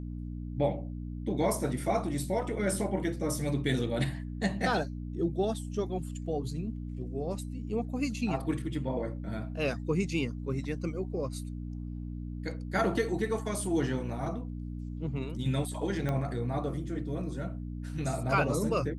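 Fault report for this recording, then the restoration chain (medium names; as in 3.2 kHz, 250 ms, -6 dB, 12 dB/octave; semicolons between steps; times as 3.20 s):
hum 60 Hz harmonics 5 -38 dBFS
16.09 s: pop -20 dBFS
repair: de-click; de-hum 60 Hz, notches 5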